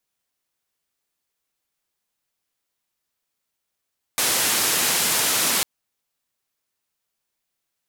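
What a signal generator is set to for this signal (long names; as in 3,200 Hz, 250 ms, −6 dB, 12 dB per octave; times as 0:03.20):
band-limited noise 140–13,000 Hz, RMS −21 dBFS 1.45 s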